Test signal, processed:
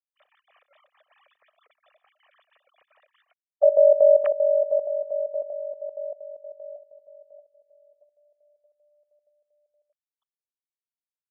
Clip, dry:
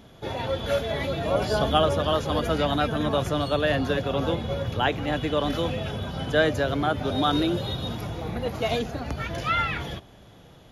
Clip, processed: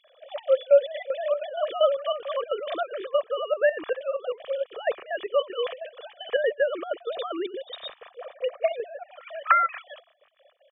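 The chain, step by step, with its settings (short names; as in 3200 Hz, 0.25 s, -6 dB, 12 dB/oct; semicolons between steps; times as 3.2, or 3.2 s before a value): sine-wave speech; comb 1.7 ms, depth 50%; step gate "xxx.x.xx.xx.x." 191 bpm -12 dB; gain -2 dB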